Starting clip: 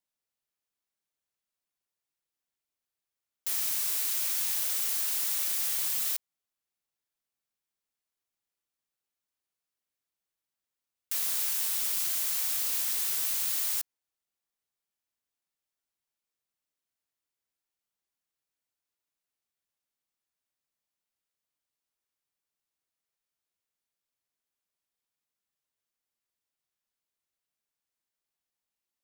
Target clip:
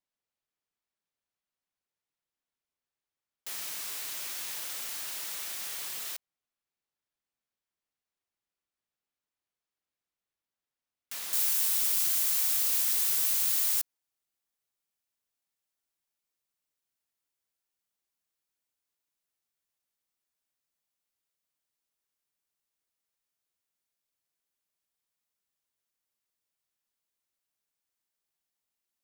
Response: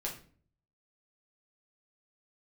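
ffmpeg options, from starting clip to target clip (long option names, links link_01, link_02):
-af "asetnsamples=nb_out_samples=441:pad=0,asendcmd='11.33 highshelf g 3',highshelf=frequency=5700:gain=-9.5"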